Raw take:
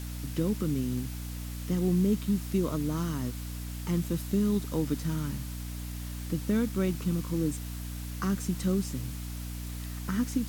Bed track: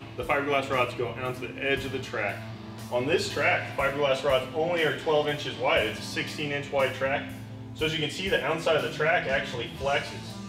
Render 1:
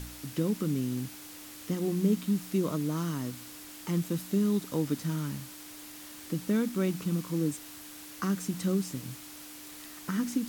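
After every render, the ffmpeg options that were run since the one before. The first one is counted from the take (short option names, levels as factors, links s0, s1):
-af "bandreject=f=60:t=h:w=4,bandreject=f=120:t=h:w=4,bandreject=f=180:t=h:w=4,bandreject=f=240:t=h:w=4"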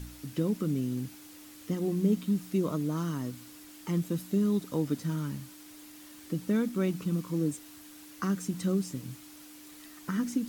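-af "afftdn=nr=6:nf=-47"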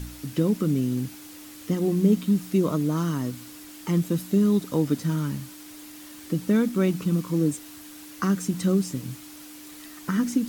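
-af "volume=2.11"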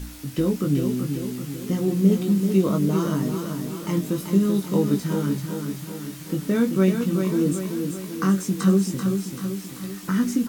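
-filter_complex "[0:a]asplit=2[s0][s1];[s1]adelay=21,volume=0.596[s2];[s0][s2]amix=inputs=2:normalize=0,aecho=1:1:386|772|1158|1544|1930|2316|2702:0.501|0.276|0.152|0.0834|0.0459|0.0252|0.0139"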